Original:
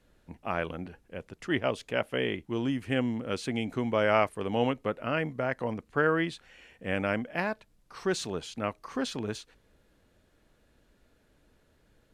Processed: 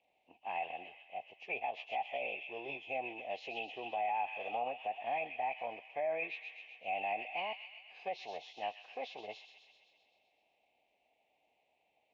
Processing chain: knee-point frequency compression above 1.6 kHz 1.5:1; on a send: feedback echo behind a high-pass 129 ms, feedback 66%, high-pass 1.6 kHz, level -7 dB; on the sum: low-pass that closes with the level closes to 2 kHz, closed at -23 dBFS; formant shift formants +5 st; two resonant band-passes 1.4 kHz, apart 1.8 oct; peak limiter -30 dBFS, peak gain reduction 8.5 dB; trim +2.5 dB

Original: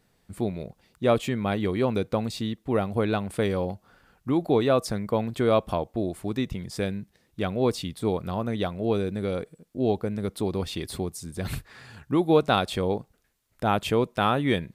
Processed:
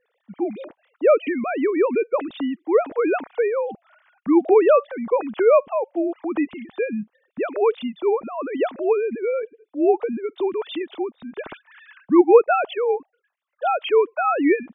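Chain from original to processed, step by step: formants replaced by sine waves; trim +5.5 dB

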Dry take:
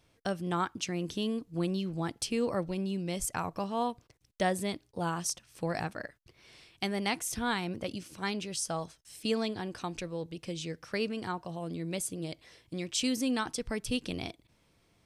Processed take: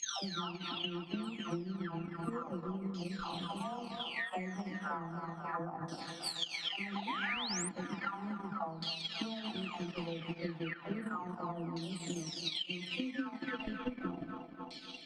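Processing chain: delay that grows with frequency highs early, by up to 989 ms; bass shelf 410 Hz -10.5 dB; band-stop 1.6 kHz, Q 11; thinning echo 268 ms, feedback 77%, high-pass 230 Hz, level -10 dB; LFO low-pass saw down 0.34 Hz 1–4.6 kHz; graphic EQ 250/500/2000 Hz +8/-8/-5 dB; on a send at -9.5 dB: reverberation RT60 1.3 s, pre-delay 6 ms; on the sum: compression 12:1, threshold -42 dBFS, peak gain reduction 12.5 dB; painted sound rise, 7.07–7.69 s, 850–9800 Hz -45 dBFS; transient shaper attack +8 dB, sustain -9 dB; trim +5 dB

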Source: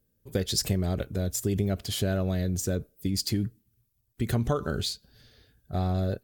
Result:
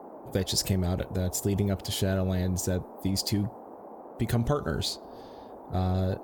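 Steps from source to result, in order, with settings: band noise 210–870 Hz -45 dBFS

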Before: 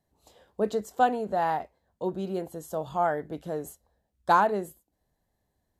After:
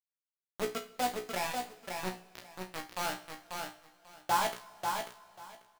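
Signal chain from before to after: reverb removal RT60 1.7 s; bit crusher 4-bit; feedback comb 61 Hz, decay 0.21 s, harmonics all, mix 100%; on a send: feedback delay 541 ms, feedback 16%, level -5 dB; on the sum: two-slope reverb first 0.49 s, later 3.4 s, from -18 dB, DRR 10.5 dB; trim -3 dB

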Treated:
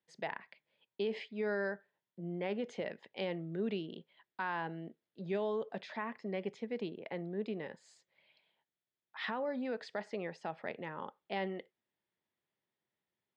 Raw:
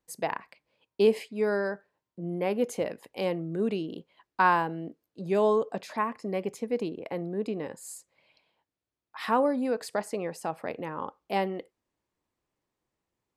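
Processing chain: treble shelf 4.1 kHz -10 dB; peak limiter -20.5 dBFS, peak gain reduction 10 dB; cabinet simulation 160–5700 Hz, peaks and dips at 290 Hz -9 dB, 490 Hz -5 dB, 740 Hz -3 dB, 1.1 kHz -7 dB, 1.9 kHz +5 dB, 3.4 kHz +8 dB; trim -3.5 dB

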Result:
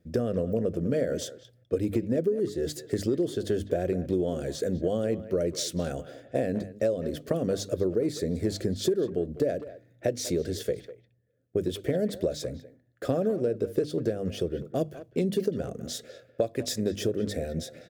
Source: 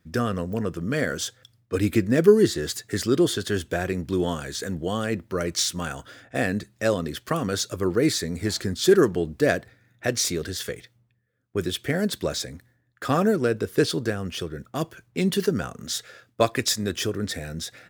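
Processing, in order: resonant low shelf 760 Hz +9 dB, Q 3; hum notches 50/100/150/200/250/300 Hz; compression 16:1, threshold -15 dBFS, peak gain reduction 18.5 dB; speakerphone echo 200 ms, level -14 dB; trim -7.5 dB

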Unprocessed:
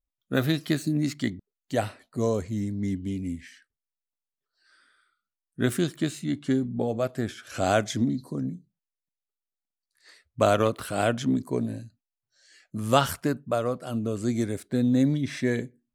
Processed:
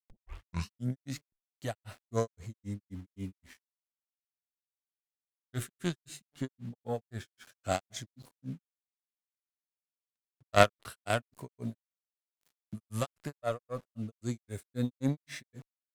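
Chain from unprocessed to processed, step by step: tape start-up on the opening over 1.12 s; dynamic bell 280 Hz, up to -7 dB, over -37 dBFS, Q 1.1; harmonic-percussive split harmonic +7 dB; treble shelf 9.9 kHz +7 dB; small samples zeroed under -42.5 dBFS; Chebyshev shaper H 2 -16 dB, 3 -12 dB, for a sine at -4 dBFS; granulator 173 ms, grains 3.8 per s, pitch spread up and down by 0 st; trim +4 dB

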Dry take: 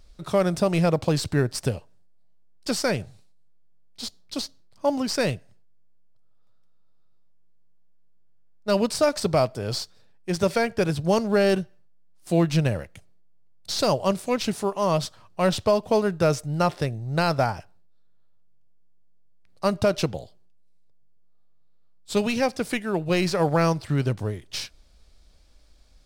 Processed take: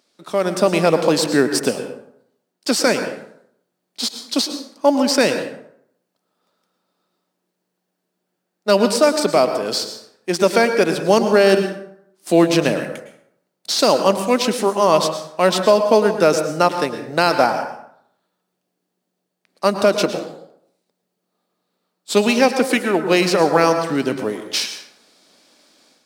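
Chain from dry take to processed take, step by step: Chebyshev high-pass 240 Hz, order 3; level rider gain up to 11.5 dB; plate-style reverb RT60 0.7 s, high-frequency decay 0.6×, pre-delay 95 ms, DRR 7.5 dB

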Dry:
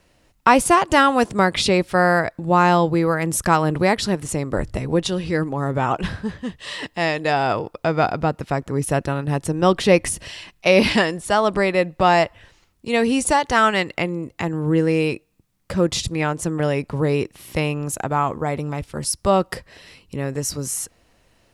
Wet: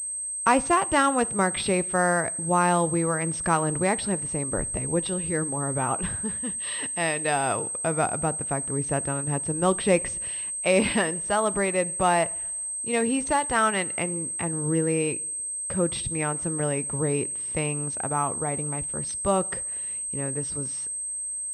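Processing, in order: 6.24–7.74 s: treble shelf 2.7 kHz +6.5 dB; two-slope reverb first 0.58 s, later 2.1 s, from -18 dB, DRR 18 dB; class-D stage that switches slowly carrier 8.3 kHz; trim -6.5 dB

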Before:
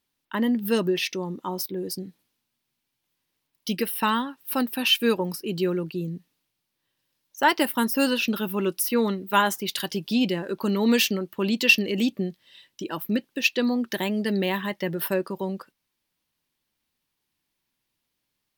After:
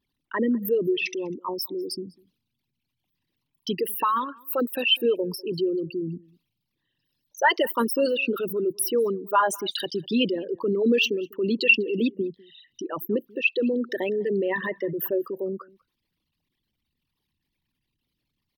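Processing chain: resonances exaggerated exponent 3; echo from a far wall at 34 m, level -25 dB

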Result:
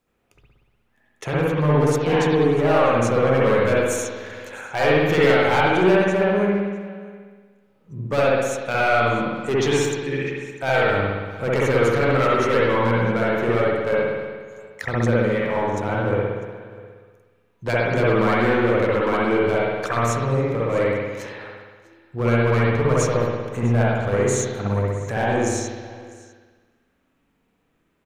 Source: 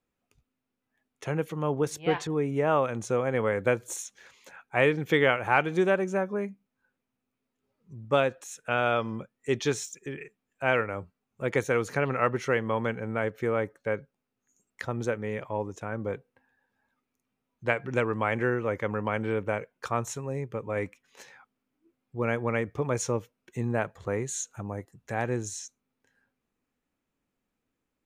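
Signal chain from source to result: in parallel at +2.5 dB: compression, threshold -32 dBFS, peak gain reduction 14.5 dB; on the sum: hard clipper -19 dBFS, distortion -11 dB; delay 649 ms -21.5 dB; spring tank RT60 1.4 s, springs 60 ms, chirp 45 ms, DRR -6.5 dB

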